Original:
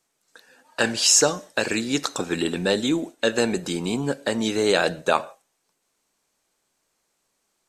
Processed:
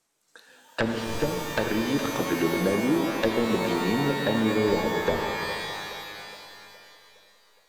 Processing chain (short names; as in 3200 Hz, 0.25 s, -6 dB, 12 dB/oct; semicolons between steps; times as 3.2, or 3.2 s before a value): one-sided fold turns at -14.5 dBFS; treble ducked by the level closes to 380 Hz, closed at -18 dBFS; on a send: split-band echo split 480 Hz, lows 0.133 s, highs 0.415 s, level -11 dB; on the sum: shimmer reverb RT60 2.3 s, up +12 st, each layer -2 dB, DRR 4.5 dB; gain -1 dB